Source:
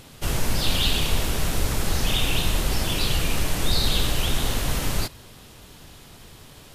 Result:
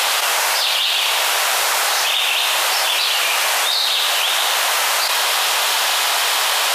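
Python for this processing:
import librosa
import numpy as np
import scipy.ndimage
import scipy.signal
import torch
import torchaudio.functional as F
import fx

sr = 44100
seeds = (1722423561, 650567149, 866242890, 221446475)

y = scipy.signal.sosfilt(scipy.signal.butter(4, 710.0, 'highpass', fs=sr, output='sos'), x)
y = fx.high_shelf(y, sr, hz=5200.0, db=-5.5)
y = fx.env_flatten(y, sr, amount_pct=100)
y = y * 10.0 ** (6.5 / 20.0)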